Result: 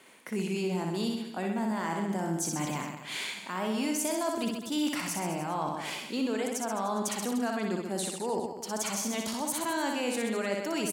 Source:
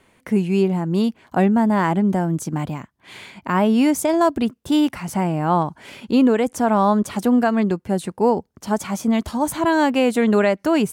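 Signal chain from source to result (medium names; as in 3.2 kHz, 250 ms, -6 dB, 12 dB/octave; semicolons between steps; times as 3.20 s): dynamic bell 6.3 kHz, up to +5 dB, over -46 dBFS, Q 0.91; high-pass 210 Hz 12 dB/octave; treble shelf 2.2 kHz +8 dB; reverse; compression 5:1, threshold -28 dBFS, peak gain reduction 15 dB; reverse; reverse bouncing-ball echo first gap 60 ms, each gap 1.15×, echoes 5; in parallel at -2 dB: peak limiter -22 dBFS, peak gain reduction 8 dB; on the sum: trim -7 dB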